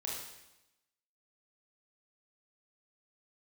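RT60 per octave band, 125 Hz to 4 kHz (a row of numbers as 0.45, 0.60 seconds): 1.0, 1.0, 0.95, 0.95, 0.95, 0.95 seconds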